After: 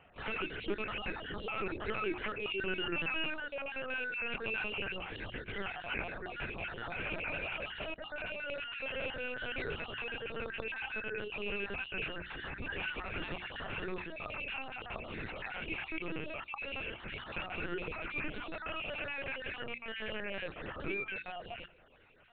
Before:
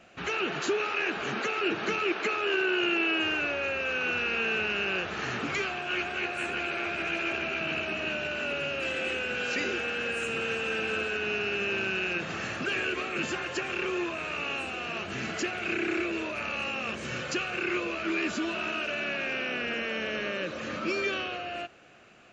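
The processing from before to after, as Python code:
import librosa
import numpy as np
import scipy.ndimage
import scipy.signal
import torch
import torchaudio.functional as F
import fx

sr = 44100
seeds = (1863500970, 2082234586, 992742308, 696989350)

y = fx.spec_dropout(x, sr, seeds[0], share_pct=38)
y = fx.peak_eq(y, sr, hz=800.0, db=3.5, octaves=0.31)
y = y + 10.0 ** (-24.0 / 20.0) * np.pad(y, (int(107 * sr / 1000.0), 0))[:len(y)]
y = fx.lpc_vocoder(y, sr, seeds[1], excitation='pitch_kept', order=10)
y = fx.hum_notches(y, sr, base_hz=60, count=6)
y = F.gain(torch.from_numpy(y), -6.0).numpy()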